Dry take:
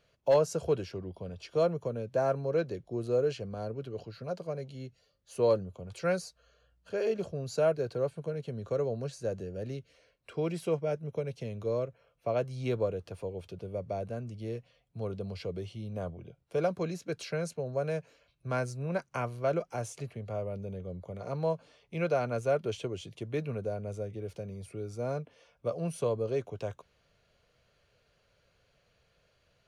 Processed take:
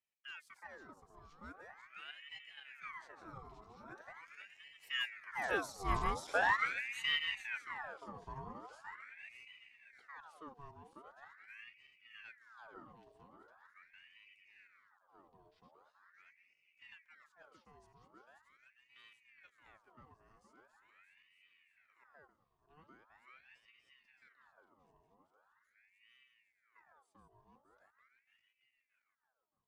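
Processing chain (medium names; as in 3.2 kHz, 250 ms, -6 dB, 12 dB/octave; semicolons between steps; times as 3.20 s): backward echo that repeats 286 ms, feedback 67%, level -5.5 dB; Doppler pass-by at 6.19 s, 31 m/s, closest 7 m; ring modulator with a swept carrier 1.5 kHz, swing 65%, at 0.42 Hz; trim +5 dB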